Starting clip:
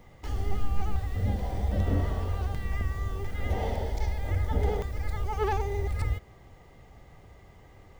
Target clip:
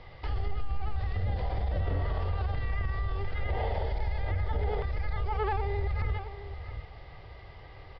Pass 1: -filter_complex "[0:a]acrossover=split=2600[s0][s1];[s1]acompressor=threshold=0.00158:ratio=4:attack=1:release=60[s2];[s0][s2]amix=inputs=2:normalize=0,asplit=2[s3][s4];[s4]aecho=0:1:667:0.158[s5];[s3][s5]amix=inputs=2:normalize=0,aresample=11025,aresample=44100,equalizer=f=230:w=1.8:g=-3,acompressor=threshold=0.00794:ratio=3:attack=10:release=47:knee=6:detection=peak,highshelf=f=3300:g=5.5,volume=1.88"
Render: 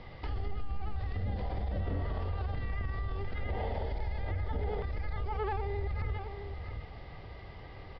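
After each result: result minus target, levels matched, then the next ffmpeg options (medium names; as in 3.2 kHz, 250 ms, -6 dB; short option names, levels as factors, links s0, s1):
250 Hz band +4.5 dB; compression: peak gain reduction +4.5 dB
-filter_complex "[0:a]acrossover=split=2600[s0][s1];[s1]acompressor=threshold=0.00158:ratio=4:attack=1:release=60[s2];[s0][s2]amix=inputs=2:normalize=0,asplit=2[s3][s4];[s4]aecho=0:1:667:0.158[s5];[s3][s5]amix=inputs=2:normalize=0,aresample=11025,aresample=44100,equalizer=f=230:w=1.8:g=-13.5,acompressor=threshold=0.00794:ratio=3:attack=10:release=47:knee=6:detection=peak,highshelf=f=3300:g=5.5,volume=1.88"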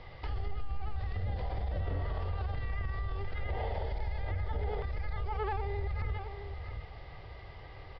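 compression: peak gain reduction +4.5 dB
-filter_complex "[0:a]acrossover=split=2600[s0][s1];[s1]acompressor=threshold=0.00158:ratio=4:attack=1:release=60[s2];[s0][s2]amix=inputs=2:normalize=0,asplit=2[s3][s4];[s4]aecho=0:1:667:0.158[s5];[s3][s5]amix=inputs=2:normalize=0,aresample=11025,aresample=44100,equalizer=f=230:w=1.8:g=-13.5,acompressor=threshold=0.0168:ratio=3:attack=10:release=47:knee=6:detection=peak,highshelf=f=3300:g=5.5,volume=1.88"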